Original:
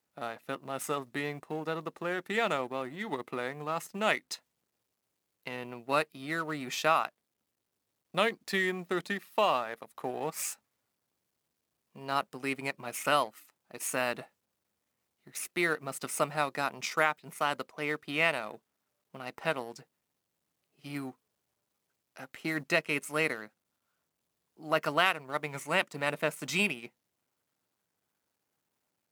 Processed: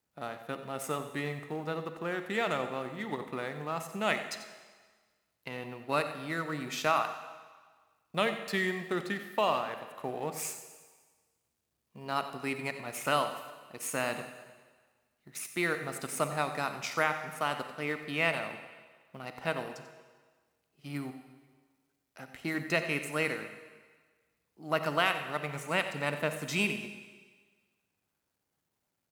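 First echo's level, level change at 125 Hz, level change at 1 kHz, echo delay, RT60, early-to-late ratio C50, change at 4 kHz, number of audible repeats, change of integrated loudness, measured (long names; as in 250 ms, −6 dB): −14.0 dB, +2.5 dB, −1.0 dB, 91 ms, 1.5 s, 8.0 dB, −1.5 dB, 1, −1.0 dB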